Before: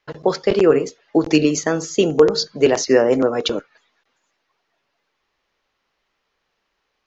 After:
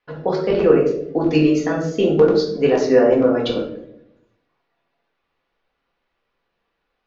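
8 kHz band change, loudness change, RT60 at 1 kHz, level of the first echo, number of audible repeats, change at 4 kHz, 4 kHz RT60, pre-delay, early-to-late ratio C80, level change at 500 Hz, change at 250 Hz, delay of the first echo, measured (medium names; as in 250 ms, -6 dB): no reading, +0.5 dB, 0.60 s, no echo, no echo, -6.0 dB, 0.45 s, 4 ms, 9.5 dB, +0.5 dB, +1.0 dB, no echo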